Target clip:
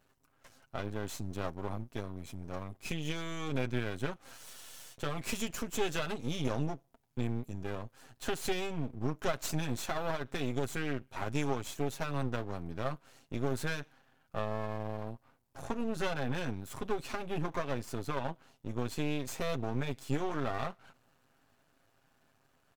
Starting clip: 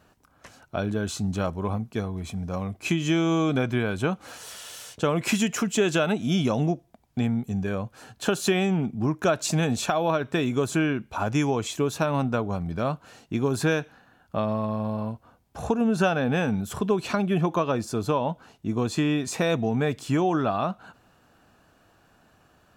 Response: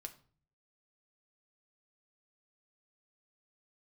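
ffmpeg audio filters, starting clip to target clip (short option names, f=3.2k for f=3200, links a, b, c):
-af "highshelf=f=8.9k:g=5,aecho=1:1:7.5:0.57,aeval=exprs='max(val(0),0)':c=same,volume=-8dB"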